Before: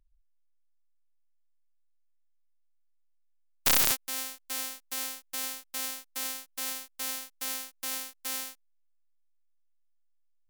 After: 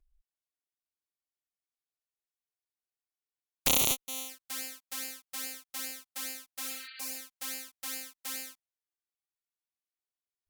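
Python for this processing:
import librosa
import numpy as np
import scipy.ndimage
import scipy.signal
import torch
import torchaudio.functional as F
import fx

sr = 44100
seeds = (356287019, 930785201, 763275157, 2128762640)

y = fx.env_flanger(x, sr, rest_ms=2.8, full_db=-31.0)
y = fx.cheby_harmonics(y, sr, harmonics=(7, 8), levels_db=(-29, -37), full_scale_db=-7.0)
y = fx.spec_repair(y, sr, seeds[0], start_s=6.66, length_s=0.48, low_hz=1300.0, high_hz=4700.0, source='both')
y = y * librosa.db_to_amplitude(2.0)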